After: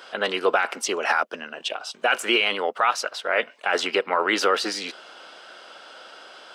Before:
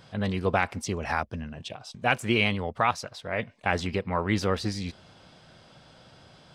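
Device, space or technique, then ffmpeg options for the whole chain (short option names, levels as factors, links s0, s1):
laptop speaker: -af "highpass=f=360:w=0.5412,highpass=f=360:w=1.3066,equalizer=f=1400:t=o:w=0.39:g=9,equalizer=f=2900:t=o:w=0.21:g=7,alimiter=limit=0.126:level=0:latency=1:release=15,volume=2.66"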